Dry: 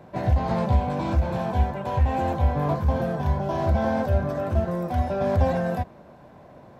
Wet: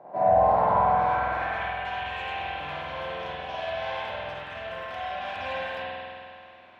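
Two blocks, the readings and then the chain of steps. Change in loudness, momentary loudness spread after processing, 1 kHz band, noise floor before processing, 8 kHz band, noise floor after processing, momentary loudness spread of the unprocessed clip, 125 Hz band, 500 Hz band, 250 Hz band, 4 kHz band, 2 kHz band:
-3.0 dB, 15 LU, +3.5 dB, -48 dBFS, no reading, -49 dBFS, 3 LU, -18.5 dB, -2.0 dB, -15.5 dB, +7.0 dB, +5.5 dB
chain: band-pass sweep 750 Hz -> 2.9 kHz, 0.33–1.81 s; spring tank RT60 2.4 s, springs 47 ms, chirp 55 ms, DRR -9 dB; trim +3.5 dB

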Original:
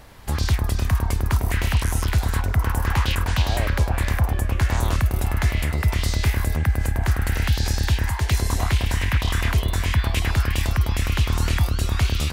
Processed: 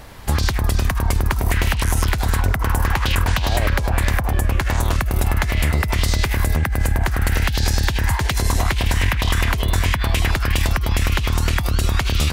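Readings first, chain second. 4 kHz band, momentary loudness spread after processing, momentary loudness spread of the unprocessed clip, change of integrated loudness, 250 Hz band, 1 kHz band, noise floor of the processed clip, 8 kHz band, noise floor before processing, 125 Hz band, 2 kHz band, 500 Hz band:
+4.0 dB, 1 LU, 1 LU, +2.5 dB, +3.0 dB, +5.0 dB, -22 dBFS, +4.5 dB, -26 dBFS, +1.5 dB, +4.5 dB, +4.5 dB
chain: compressor with a negative ratio -22 dBFS, ratio -1; trim +4.5 dB

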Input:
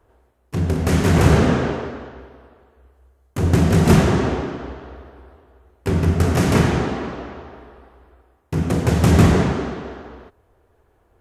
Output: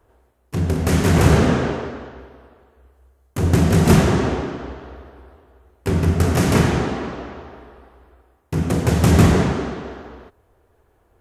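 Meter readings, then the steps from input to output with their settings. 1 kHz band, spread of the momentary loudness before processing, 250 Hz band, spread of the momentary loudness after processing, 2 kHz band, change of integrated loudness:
0.0 dB, 19 LU, 0.0 dB, 18 LU, 0.0 dB, 0.0 dB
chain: treble shelf 6.8 kHz +4 dB

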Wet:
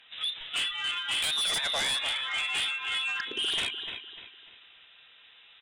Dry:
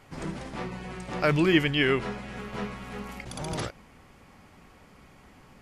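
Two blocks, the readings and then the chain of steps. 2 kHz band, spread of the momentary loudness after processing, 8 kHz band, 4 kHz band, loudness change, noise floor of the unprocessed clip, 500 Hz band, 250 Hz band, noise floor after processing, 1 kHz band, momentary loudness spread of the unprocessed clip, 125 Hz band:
+0.5 dB, 11 LU, +10.0 dB, +9.5 dB, +0.5 dB, -55 dBFS, -15.5 dB, -23.5 dB, -57 dBFS, -3.5 dB, 17 LU, -24.5 dB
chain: spectral noise reduction 19 dB; compression 3:1, threshold -43 dBFS, peak gain reduction 19 dB; overdrive pedal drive 14 dB, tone 1.5 kHz, clips at -24 dBFS; frequency inversion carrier 3.8 kHz; feedback delay 298 ms, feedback 35%, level -11 dB; sine folder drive 10 dB, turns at -25.5 dBFS

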